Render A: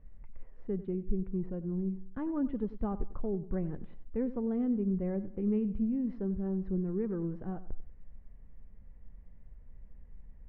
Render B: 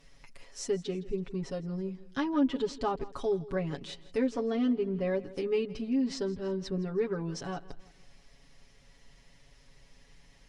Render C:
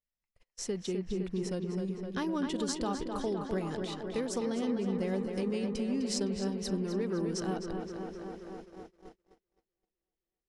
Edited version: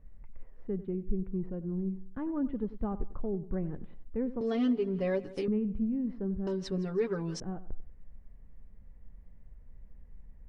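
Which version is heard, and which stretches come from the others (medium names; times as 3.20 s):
A
4.41–5.48 s: from B
6.47–7.40 s: from B
not used: C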